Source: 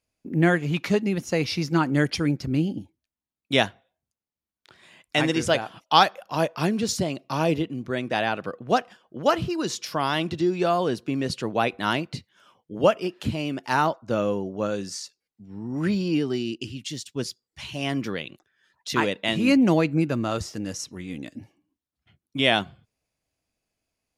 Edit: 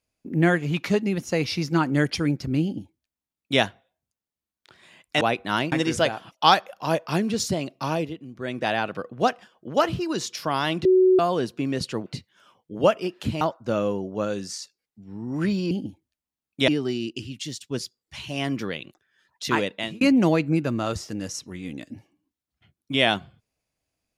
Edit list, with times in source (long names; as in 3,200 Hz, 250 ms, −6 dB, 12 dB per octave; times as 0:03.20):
0:02.63–0:03.60: duplicate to 0:16.13
0:07.33–0:08.08: duck −8.5 dB, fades 0.26 s
0:10.34–0:10.68: beep over 372 Hz −13 dBFS
0:11.55–0:12.06: move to 0:05.21
0:13.41–0:13.83: remove
0:19.01–0:19.46: fade out equal-power